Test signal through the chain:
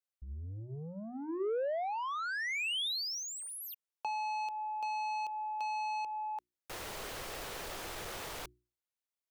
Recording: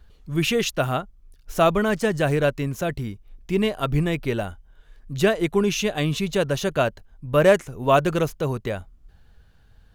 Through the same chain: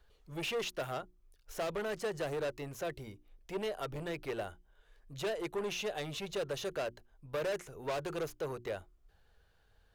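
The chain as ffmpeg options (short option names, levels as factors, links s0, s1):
-filter_complex "[0:a]asoftclip=type=tanh:threshold=0.0708,acrossover=split=440|3000[s0][s1][s2];[s1]acompressor=threshold=0.0398:ratio=6[s3];[s0][s3][s2]amix=inputs=3:normalize=0,lowshelf=f=320:t=q:w=1.5:g=-7,acrossover=split=4600[s4][s5];[s5]acompressor=threshold=0.0141:ratio=4:attack=1:release=60[s6];[s4][s6]amix=inputs=2:normalize=0,bandreject=f=60:t=h:w=6,bandreject=f=120:t=h:w=6,bandreject=f=180:t=h:w=6,bandreject=f=240:t=h:w=6,bandreject=f=300:t=h:w=6,bandreject=f=360:t=h:w=6,volume=0.398"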